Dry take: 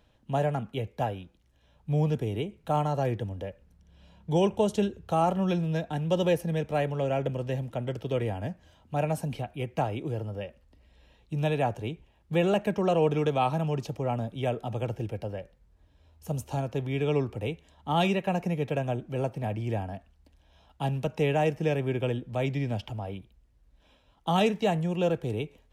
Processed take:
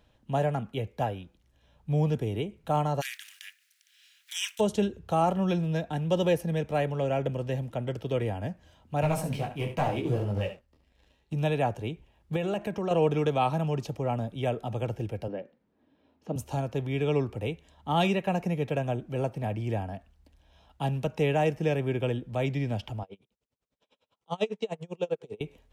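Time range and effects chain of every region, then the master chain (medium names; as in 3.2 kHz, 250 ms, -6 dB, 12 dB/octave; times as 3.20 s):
3.00–4.59 s: spectral contrast reduction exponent 0.63 + steep high-pass 1.7 kHz
9.01–11.34 s: waveshaping leveller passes 2 + delay 71 ms -9.5 dB + detune thickener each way 26 cents
12.36–12.91 s: de-hum 341.1 Hz, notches 3 + compression 2:1, threshold -30 dBFS
15.28–16.36 s: resonant high-pass 250 Hz, resonance Q 2.8 + distance through air 210 m
23.03–25.41 s: cabinet simulation 220–8800 Hz, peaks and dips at 310 Hz -8 dB, 440 Hz +7 dB, 720 Hz -3 dB, 1.7 kHz -7 dB + logarithmic tremolo 10 Hz, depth 33 dB
whole clip: none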